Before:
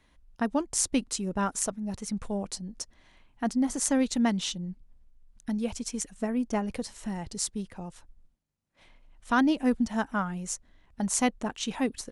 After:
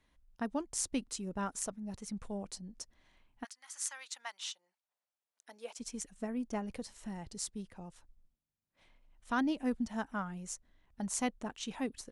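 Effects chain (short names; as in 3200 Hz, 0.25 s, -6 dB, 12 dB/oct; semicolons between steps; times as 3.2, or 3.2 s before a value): 3.43–5.79 HPF 1400 Hz -> 400 Hz 24 dB/oct; gain -8.5 dB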